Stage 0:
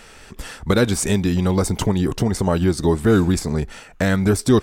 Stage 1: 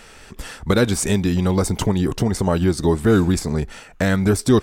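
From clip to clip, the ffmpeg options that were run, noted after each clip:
-af anull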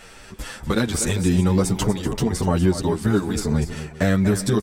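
-filter_complex "[0:a]acompressor=threshold=0.158:ratio=6,asplit=2[s0][s1];[s1]aecho=0:1:242|392:0.282|0.126[s2];[s0][s2]amix=inputs=2:normalize=0,asplit=2[s3][s4];[s4]adelay=8.4,afreqshift=0.76[s5];[s3][s5]amix=inputs=2:normalize=1,volume=1.41"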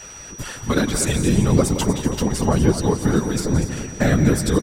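-af "afftfilt=real='hypot(re,im)*cos(2*PI*random(0))':imag='hypot(re,im)*sin(2*PI*random(1))':win_size=512:overlap=0.75,aeval=exprs='val(0)+0.00562*sin(2*PI*5800*n/s)':c=same,aecho=1:1:171|342|513|684|855:0.237|0.121|0.0617|0.0315|0.016,volume=2.37"

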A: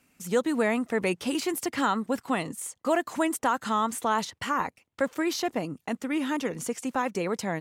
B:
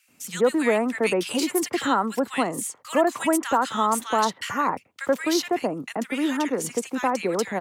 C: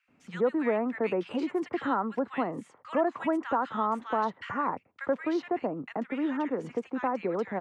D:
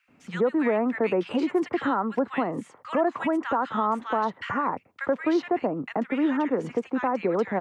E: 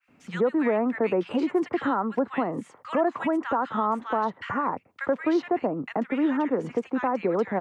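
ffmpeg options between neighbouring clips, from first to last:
-filter_complex "[0:a]highpass=91,acrossover=split=230|440|2600[s0][s1][s2][s3];[s0]acompressor=threshold=0.00501:ratio=6[s4];[s4][s1][s2][s3]amix=inputs=4:normalize=0,acrossover=split=1600[s5][s6];[s5]adelay=80[s7];[s7][s6]amix=inputs=2:normalize=0,volume=1.88"
-filter_complex "[0:a]lowpass=1700,asplit=2[s0][s1];[s1]acompressor=threshold=0.0282:ratio=6,volume=0.891[s2];[s0][s2]amix=inputs=2:normalize=0,volume=0.422"
-af "alimiter=limit=0.0891:level=0:latency=1:release=176,volume=2"
-af "adynamicequalizer=threshold=0.0112:dfrequency=1800:dqfactor=0.7:tfrequency=1800:tqfactor=0.7:attack=5:release=100:ratio=0.375:range=2:mode=cutabove:tftype=highshelf"

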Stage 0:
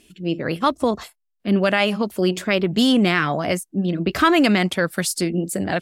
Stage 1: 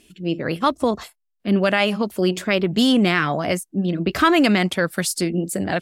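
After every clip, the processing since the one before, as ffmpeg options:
-af anull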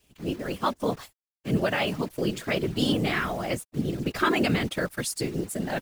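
-af "acrusher=bits=7:dc=4:mix=0:aa=0.000001,afftfilt=real='hypot(re,im)*cos(2*PI*random(0))':imag='hypot(re,im)*sin(2*PI*random(1))':win_size=512:overlap=0.75,volume=0.841"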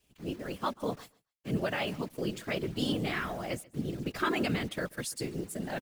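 -af "aecho=1:1:136|272:0.0668|0.0107,volume=0.473"

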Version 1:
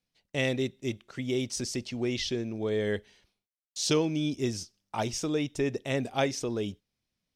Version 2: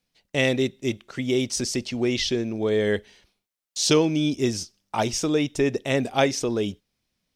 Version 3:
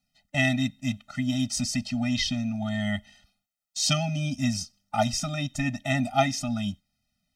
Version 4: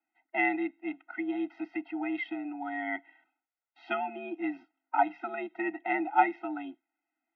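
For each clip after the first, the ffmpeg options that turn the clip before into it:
-af "equalizer=f=110:t=o:w=1.1:g=-3,volume=2.24"
-af "afftfilt=real='re*eq(mod(floor(b*sr/1024/300),2),0)':imag='im*eq(mod(floor(b*sr/1024/300),2),0)':win_size=1024:overlap=0.75,volume=1.19"
-af "highpass=f=280:t=q:w=0.5412,highpass=f=280:t=q:w=1.307,lowpass=f=2200:t=q:w=0.5176,lowpass=f=2200:t=q:w=0.7071,lowpass=f=2200:t=q:w=1.932,afreqshift=70"

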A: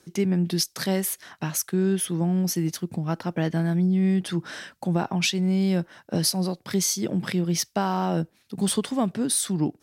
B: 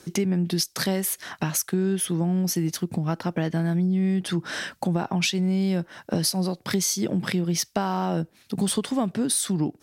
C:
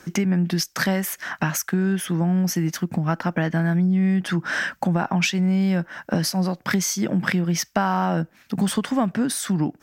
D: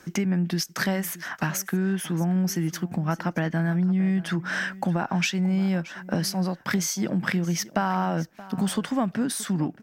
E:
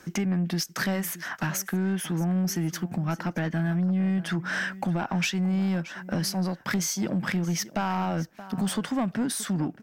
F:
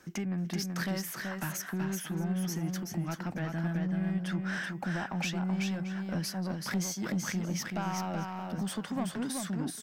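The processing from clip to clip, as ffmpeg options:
-af "acompressor=threshold=0.02:ratio=2.5,volume=2.66"
-af "equalizer=f=100:t=o:w=0.67:g=-8,equalizer=f=400:t=o:w=0.67:g=-7,equalizer=f=1600:t=o:w=0.67:g=5,equalizer=f=4000:t=o:w=0.67:g=-8,equalizer=f=10000:t=o:w=0.67:g=-11,volume=1.78"
-af "aecho=1:1:625:0.126,volume=0.668"
-af "asoftclip=type=tanh:threshold=0.106"
-af "aecho=1:1:380:0.631,volume=0.422"

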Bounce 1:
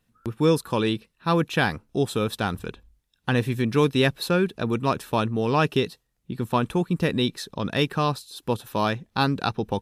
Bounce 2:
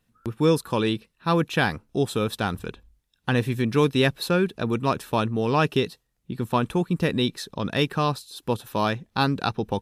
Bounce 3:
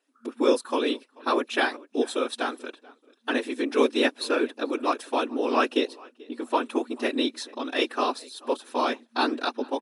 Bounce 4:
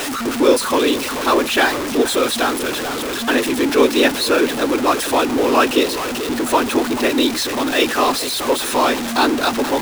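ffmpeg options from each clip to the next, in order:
-af anull
-filter_complex "[0:a]asplit=2[s0][s1];[s1]adelay=436,lowpass=f=3600:p=1,volume=0.0708,asplit=2[s2][s3];[s3]adelay=436,lowpass=f=3600:p=1,volume=0.29[s4];[s0][s2][s4]amix=inputs=3:normalize=0,afftfilt=real='hypot(re,im)*cos(2*PI*random(0))':imag='hypot(re,im)*sin(2*PI*random(1))':win_size=512:overlap=0.75,afftfilt=real='re*between(b*sr/4096,230,11000)':imag='im*between(b*sr/4096,230,11000)':win_size=4096:overlap=0.75,volume=1.78"
-af "aeval=exprs='val(0)+0.5*0.0668*sgn(val(0))':c=same,volume=2"

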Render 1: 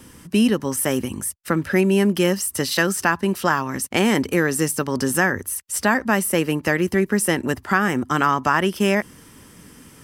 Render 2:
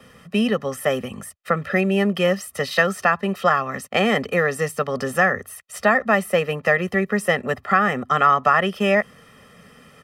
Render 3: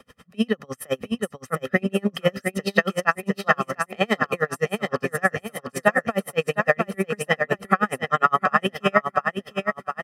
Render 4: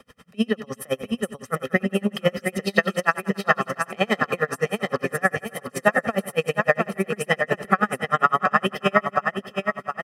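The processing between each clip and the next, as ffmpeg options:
-filter_complex "[0:a]acrossover=split=170 3600:gain=0.2 1 0.178[s0][s1][s2];[s0][s1][s2]amix=inputs=3:normalize=0,aecho=1:1:1.6:0.93"
-af "aecho=1:1:706|1412|2118|2824|3530:0.562|0.247|0.109|0.0479|0.0211,aeval=exprs='val(0)*pow(10,-37*(0.5-0.5*cos(2*PI*9.7*n/s))/20)':c=same,volume=1.33"
-af "aecho=1:1:92|184|276|368:0.188|0.081|0.0348|0.015"

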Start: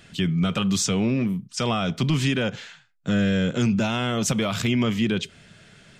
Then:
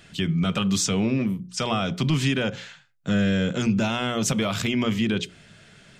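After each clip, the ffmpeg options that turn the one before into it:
-af "bandreject=f=60:t=h:w=6,bandreject=f=120:t=h:w=6,bandreject=f=180:t=h:w=6,bandreject=f=240:t=h:w=6,bandreject=f=300:t=h:w=6,bandreject=f=360:t=h:w=6,bandreject=f=420:t=h:w=6,bandreject=f=480:t=h:w=6,bandreject=f=540:t=h:w=6"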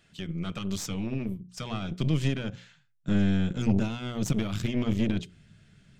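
-af "asubboost=boost=4.5:cutoff=250,aeval=exprs='0.562*(cos(1*acos(clip(val(0)/0.562,-1,1)))-cos(1*PI/2))+0.0398*(cos(3*acos(clip(val(0)/0.562,-1,1)))-cos(3*PI/2))+0.0891*(cos(4*acos(clip(val(0)/0.562,-1,1)))-cos(4*PI/2))+0.0126*(cos(7*acos(clip(val(0)/0.562,-1,1)))-cos(7*PI/2))':c=same,volume=0.355"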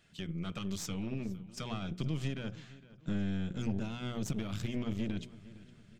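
-filter_complex "[0:a]acompressor=threshold=0.0282:ratio=2,asplit=2[s0][s1];[s1]adelay=460,lowpass=f=4700:p=1,volume=0.126,asplit=2[s2][s3];[s3]adelay=460,lowpass=f=4700:p=1,volume=0.41,asplit=2[s4][s5];[s5]adelay=460,lowpass=f=4700:p=1,volume=0.41[s6];[s0][s2][s4][s6]amix=inputs=4:normalize=0,volume=0.668"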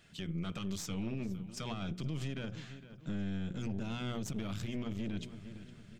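-af "alimiter=level_in=2.66:limit=0.0631:level=0:latency=1:release=107,volume=0.376,volume=1.58"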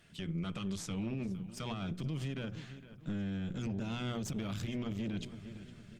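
-af "volume=1.12" -ar 48000 -c:a libopus -b:a 32k

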